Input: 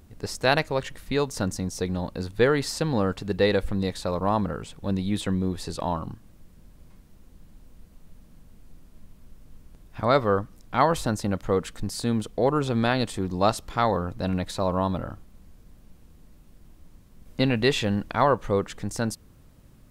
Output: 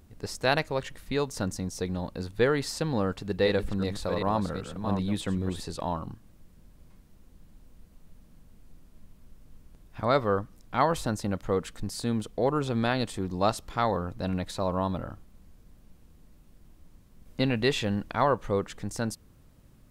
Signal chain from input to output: 3.07–5.60 s: chunks repeated in reverse 385 ms, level -7 dB; trim -3.5 dB

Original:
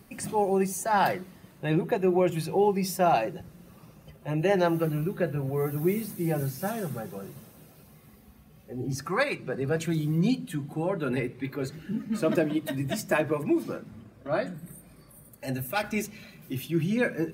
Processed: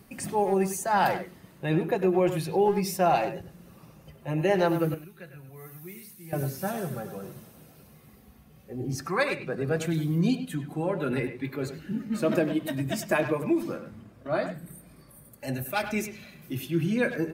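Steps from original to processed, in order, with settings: 4.94–6.33 s: amplifier tone stack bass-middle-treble 5-5-5; speakerphone echo 100 ms, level -9 dB

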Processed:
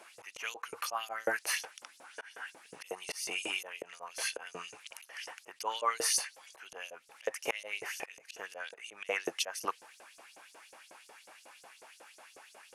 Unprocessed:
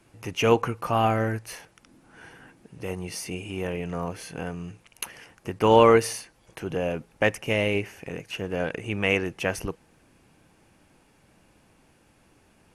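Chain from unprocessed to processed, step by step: dynamic bell 2.6 kHz, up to -6 dB, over -42 dBFS, Q 1.8; LFO high-pass saw up 5.5 Hz 480–7200 Hz; in parallel at +1 dB: compression 10:1, threshold -35 dBFS, peak gain reduction 24.5 dB; on the sum: slow attack 266 ms

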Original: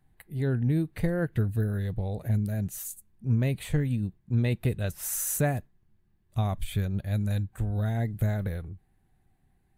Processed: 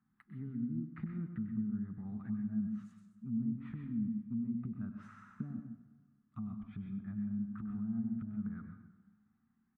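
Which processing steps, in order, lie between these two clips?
low-pass that closes with the level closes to 390 Hz, closed at -23 dBFS; compression, threshold -28 dBFS, peak gain reduction 8 dB; two resonant band-passes 530 Hz, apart 2.5 oct; delay 98 ms -12 dB; on a send at -5.5 dB: reverberation, pre-delay 120 ms; on the sum: trim +4 dB

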